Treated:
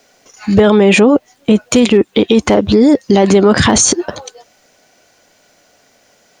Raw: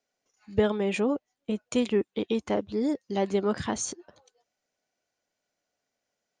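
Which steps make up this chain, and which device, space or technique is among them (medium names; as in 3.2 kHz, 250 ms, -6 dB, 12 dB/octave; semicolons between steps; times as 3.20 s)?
loud club master (compression 2:1, threshold -28 dBFS, peak gain reduction 6 dB; hard clipper -21 dBFS, distortion -26 dB; loudness maximiser +32 dB); trim -1 dB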